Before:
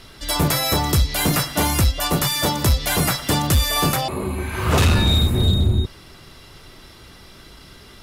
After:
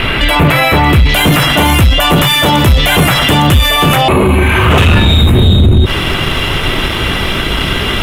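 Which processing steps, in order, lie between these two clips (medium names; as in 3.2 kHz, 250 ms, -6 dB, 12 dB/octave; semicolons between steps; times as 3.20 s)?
waveshaping leveller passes 1; resonant high shelf 3.8 kHz -13 dB, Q 3, from 1.09 s -7 dB; loudness maximiser +28 dB; trim -1 dB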